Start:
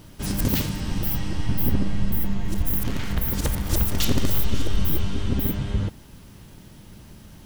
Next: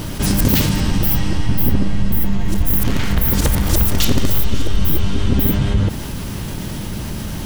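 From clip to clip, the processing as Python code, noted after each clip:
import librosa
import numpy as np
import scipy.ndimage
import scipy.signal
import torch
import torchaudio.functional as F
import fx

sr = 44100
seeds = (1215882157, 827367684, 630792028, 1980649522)

y = fx.env_flatten(x, sr, amount_pct=50)
y = F.gain(torch.from_numpy(y), 4.5).numpy()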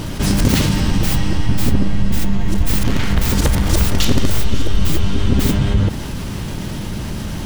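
y = scipy.signal.medfilt(x, 3)
y = F.gain(torch.from_numpy(y), 1.0).numpy()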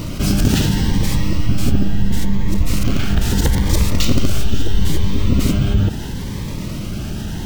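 y = np.repeat(scipy.signal.resample_poly(x, 1, 2), 2)[:len(x)]
y = fx.notch_cascade(y, sr, direction='rising', hz=0.75)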